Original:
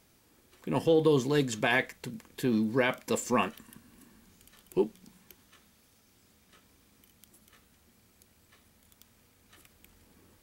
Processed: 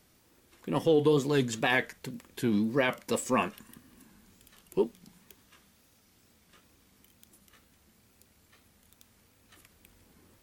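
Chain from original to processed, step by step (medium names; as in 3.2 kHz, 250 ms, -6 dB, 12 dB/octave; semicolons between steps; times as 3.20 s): wow and flutter 120 cents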